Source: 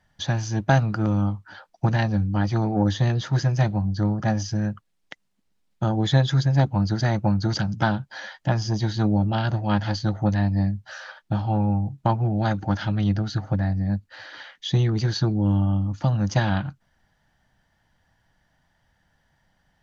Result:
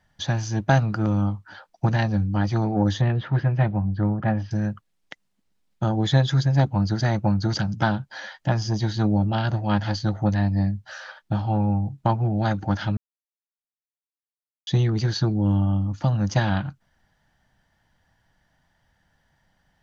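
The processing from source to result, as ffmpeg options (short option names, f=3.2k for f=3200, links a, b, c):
-filter_complex "[0:a]asettb=1/sr,asplit=3[a][b][c];[a]atrim=end=3.014[d];[b]atrim=start=3.01:end=4.51,asetpts=PTS-STARTPTS,afade=t=in:d=0.004:c=qsin,afade=t=out:st=1.496:d=0.004:c=qsin,lowpass=f=2.9k:w=0.5412,lowpass=f=2.9k:w=1.3066[e];[c]atrim=start=4.506[f];[d][e]acrossfade=d=0.004:c1=hsin:c2=qsin[g];[g][f]acrossfade=d=0.004:c1=qsin:c2=hsin,asplit=3[h][i][j];[h]atrim=end=12.97,asetpts=PTS-STARTPTS,afade=t=out:st=12.966:d=0.004:c=hsin[k];[i]atrim=start=12.97:end=14.67,asetpts=PTS-STARTPTS,volume=0[l];[j]atrim=start=14.67,asetpts=PTS-STARTPTS,afade=t=in:d=0.004:c=hsin[m];[k][l][m]concat=n=3:v=0:a=1"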